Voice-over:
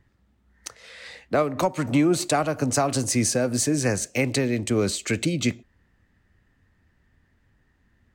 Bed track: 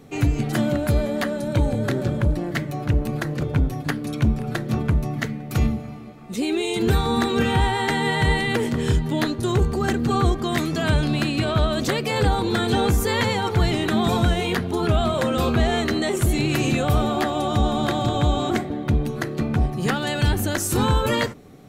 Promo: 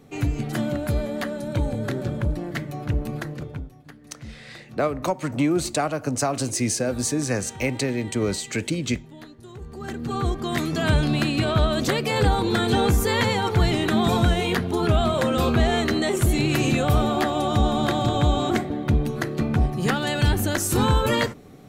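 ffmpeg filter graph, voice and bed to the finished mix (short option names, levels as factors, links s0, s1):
-filter_complex "[0:a]adelay=3450,volume=0.841[s0];[1:a]volume=6.68,afade=t=out:st=3.16:d=0.55:silence=0.149624,afade=t=in:st=9.6:d=1.29:silence=0.0944061[s1];[s0][s1]amix=inputs=2:normalize=0"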